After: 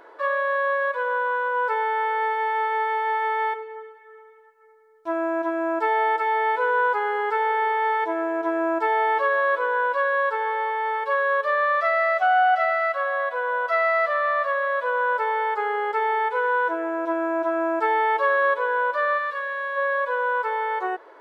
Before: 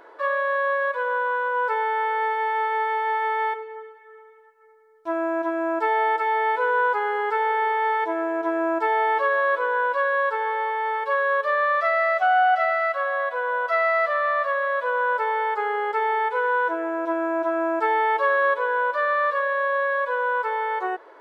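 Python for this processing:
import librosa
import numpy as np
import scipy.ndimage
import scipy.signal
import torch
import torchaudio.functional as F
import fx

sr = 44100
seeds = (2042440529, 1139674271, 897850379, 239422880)

y = fx.peak_eq(x, sr, hz=700.0, db=-11.0, octaves=1.4, at=(19.17, 19.76), fade=0.02)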